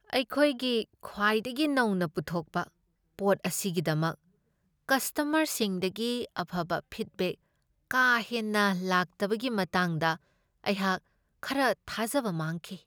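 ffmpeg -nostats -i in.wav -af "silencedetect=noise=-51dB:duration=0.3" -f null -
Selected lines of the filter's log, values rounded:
silence_start: 2.68
silence_end: 3.19 | silence_duration: 0.51
silence_start: 4.15
silence_end: 4.89 | silence_duration: 0.74
silence_start: 7.35
silence_end: 7.91 | silence_duration: 0.56
silence_start: 10.17
silence_end: 10.64 | silence_duration: 0.48
silence_start: 10.98
silence_end: 11.43 | silence_duration: 0.45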